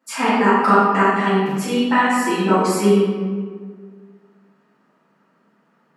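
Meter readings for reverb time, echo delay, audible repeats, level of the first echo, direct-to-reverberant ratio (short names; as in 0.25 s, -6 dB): 1.7 s, none, none, none, -13.5 dB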